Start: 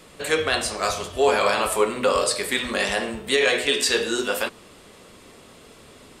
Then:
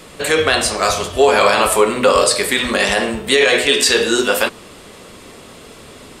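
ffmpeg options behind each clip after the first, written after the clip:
-af "alimiter=level_in=10dB:limit=-1dB:release=50:level=0:latency=1,volume=-1dB"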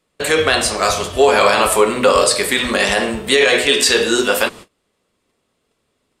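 -af "agate=range=-30dB:threshold=-33dB:ratio=16:detection=peak"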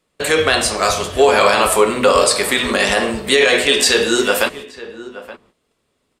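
-filter_complex "[0:a]asplit=2[a][b];[b]adelay=874.6,volume=-15dB,highshelf=f=4k:g=-19.7[c];[a][c]amix=inputs=2:normalize=0"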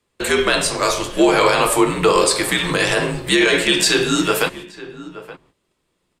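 -af "afreqshift=-72,volume=-2dB"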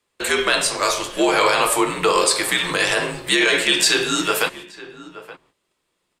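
-af "lowshelf=f=350:g=-10.5"

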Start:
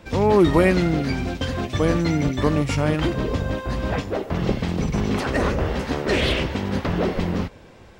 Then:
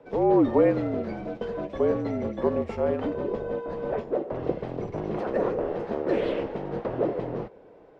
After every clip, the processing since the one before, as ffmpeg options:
-af "bandpass=f=570:t=q:w=1.9:csg=0,afreqshift=-52,volume=1.5dB"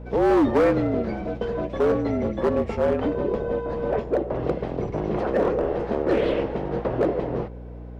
-filter_complex "[0:a]acrossover=split=1500[a][b];[a]volume=19.5dB,asoftclip=hard,volume=-19.5dB[c];[c][b]amix=inputs=2:normalize=0,aeval=exprs='val(0)+0.00891*(sin(2*PI*60*n/s)+sin(2*PI*2*60*n/s)/2+sin(2*PI*3*60*n/s)/3+sin(2*PI*4*60*n/s)/4+sin(2*PI*5*60*n/s)/5)':c=same,volume=4.5dB"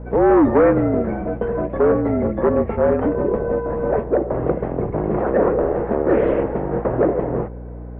-af "lowpass=f=1.9k:w=0.5412,lowpass=f=1.9k:w=1.3066,volume=5dB"

